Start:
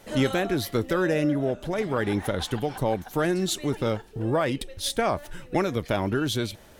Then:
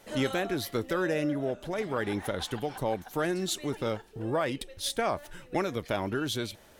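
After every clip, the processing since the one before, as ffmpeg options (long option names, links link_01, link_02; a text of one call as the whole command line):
ffmpeg -i in.wav -af "lowshelf=frequency=240:gain=-5.5,volume=-3.5dB" out.wav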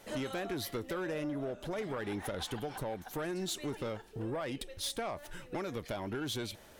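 ffmpeg -i in.wav -af "acompressor=threshold=-31dB:ratio=6,asoftclip=type=tanh:threshold=-29.5dB" out.wav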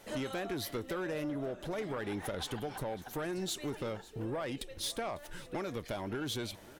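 ffmpeg -i in.wav -af "aecho=1:1:549|1098|1647:0.1|0.04|0.016" out.wav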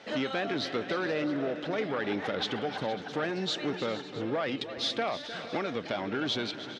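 ffmpeg -i in.wav -af "highpass=210,equalizer=frequency=360:width_type=q:width=4:gain=-5,equalizer=frequency=580:width_type=q:width=4:gain=-3,equalizer=frequency=980:width_type=q:width=4:gain=-5,lowpass=frequency=4800:width=0.5412,lowpass=frequency=4800:width=1.3066,aecho=1:1:306|403|464|661:0.224|0.133|0.168|0.119,volume=8.5dB" out.wav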